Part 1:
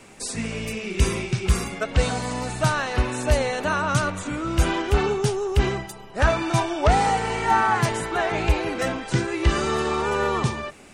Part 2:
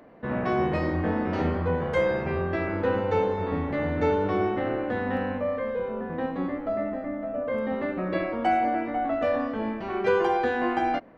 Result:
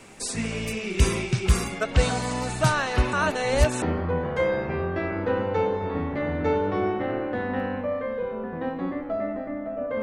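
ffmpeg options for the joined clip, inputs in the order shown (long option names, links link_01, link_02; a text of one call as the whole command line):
ffmpeg -i cue0.wav -i cue1.wav -filter_complex "[0:a]apad=whole_dur=10.02,atrim=end=10.02,asplit=2[link_01][link_02];[link_01]atrim=end=3.132[link_03];[link_02]atrim=start=3.128:end=3.822,asetpts=PTS-STARTPTS,areverse[link_04];[1:a]atrim=start=1.388:end=7.59[link_05];[link_03][link_04]acrossfade=duration=0.004:curve1=hsin:curve2=hsin[link_06];[link_06][link_05]acrossfade=duration=0.004:curve1=hsin:curve2=hsin" out.wav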